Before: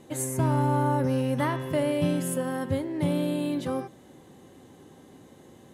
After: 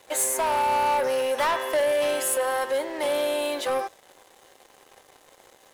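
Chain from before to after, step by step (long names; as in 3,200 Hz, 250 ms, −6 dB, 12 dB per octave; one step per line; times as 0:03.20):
high-pass filter 520 Hz 24 dB per octave
leveller curve on the samples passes 3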